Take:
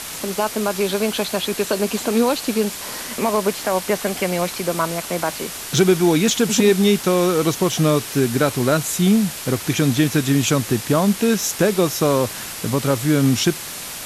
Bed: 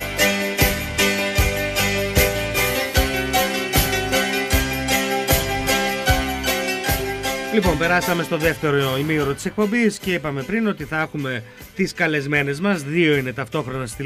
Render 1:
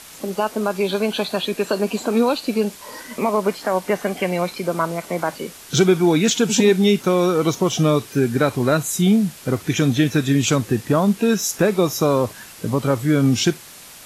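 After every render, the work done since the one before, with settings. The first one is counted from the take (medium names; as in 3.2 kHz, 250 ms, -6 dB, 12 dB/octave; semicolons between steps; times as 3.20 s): noise print and reduce 10 dB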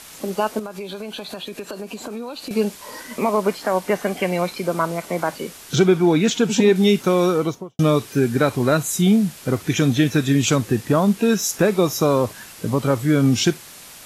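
0.59–2.51 s: compression, threshold -28 dBFS; 5.75–6.76 s: treble shelf 4.4 kHz -8 dB; 7.27–7.79 s: studio fade out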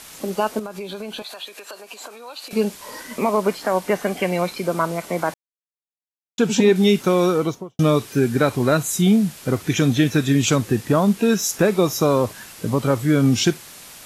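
1.22–2.53 s: high-pass 710 Hz; 5.34–6.38 s: mute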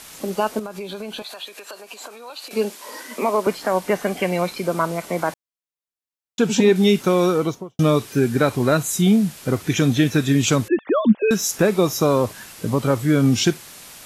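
2.30–3.47 s: high-pass 240 Hz 24 dB/octave; 10.68–11.31 s: formants replaced by sine waves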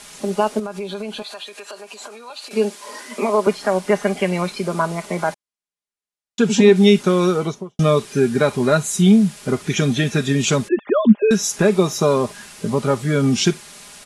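steep low-pass 11 kHz 48 dB/octave; comb 4.9 ms, depth 57%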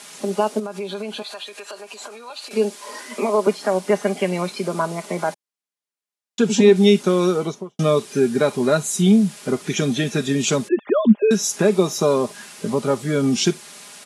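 high-pass 180 Hz 12 dB/octave; dynamic bell 1.7 kHz, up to -4 dB, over -32 dBFS, Q 0.71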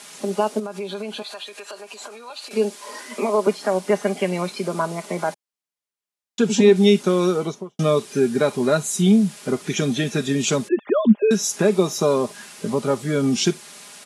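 trim -1 dB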